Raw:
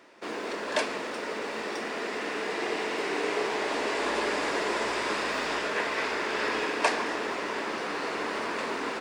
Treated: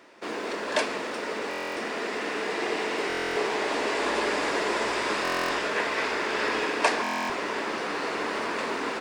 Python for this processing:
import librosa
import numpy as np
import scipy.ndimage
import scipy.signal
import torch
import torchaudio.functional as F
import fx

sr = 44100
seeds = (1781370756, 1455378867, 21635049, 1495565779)

y = fx.buffer_glitch(x, sr, at_s=(1.49, 3.08, 5.23, 7.02), block=1024, repeats=11)
y = F.gain(torch.from_numpy(y), 2.0).numpy()